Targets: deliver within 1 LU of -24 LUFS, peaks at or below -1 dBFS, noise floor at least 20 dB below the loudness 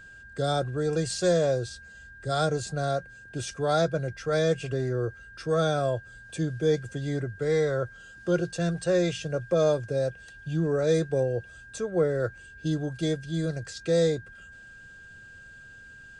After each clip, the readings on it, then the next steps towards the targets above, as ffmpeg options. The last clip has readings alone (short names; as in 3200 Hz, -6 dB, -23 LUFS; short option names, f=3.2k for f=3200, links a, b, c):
steady tone 1600 Hz; tone level -46 dBFS; loudness -28.0 LUFS; peak -13.0 dBFS; loudness target -24.0 LUFS
-> -af "bandreject=f=1.6k:w=30"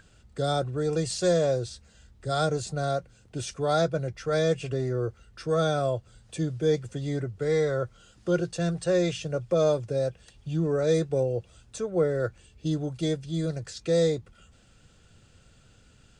steady tone none; loudness -28.0 LUFS; peak -13.0 dBFS; loudness target -24.0 LUFS
-> -af "volume=4dB"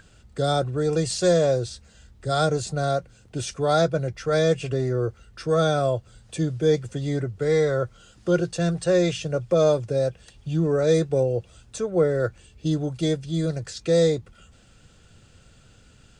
loudness -24.0 LUFS; peak -9.0 dBFS; noise floor -54 dBFS